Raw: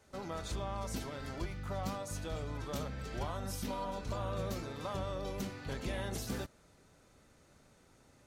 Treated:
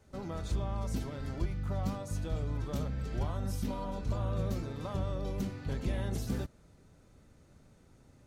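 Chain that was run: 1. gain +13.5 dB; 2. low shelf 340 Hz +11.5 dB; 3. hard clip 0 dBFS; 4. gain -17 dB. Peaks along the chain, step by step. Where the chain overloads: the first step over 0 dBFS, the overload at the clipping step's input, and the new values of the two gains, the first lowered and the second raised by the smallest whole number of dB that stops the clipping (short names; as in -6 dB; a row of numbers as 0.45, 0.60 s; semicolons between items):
-12.5, -4.0, -4.0, -21.0 dBFS; no overload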